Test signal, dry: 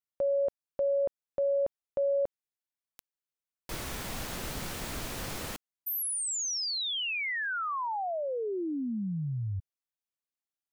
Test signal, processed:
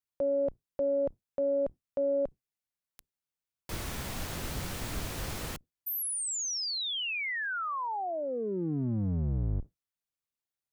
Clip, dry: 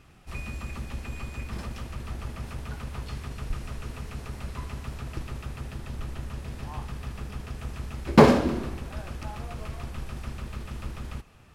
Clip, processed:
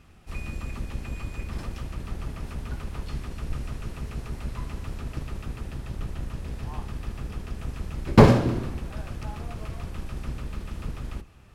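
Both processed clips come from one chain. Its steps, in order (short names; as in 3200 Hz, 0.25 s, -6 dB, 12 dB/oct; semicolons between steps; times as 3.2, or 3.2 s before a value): octaver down 1 oct, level +2 dB; gain -1 dB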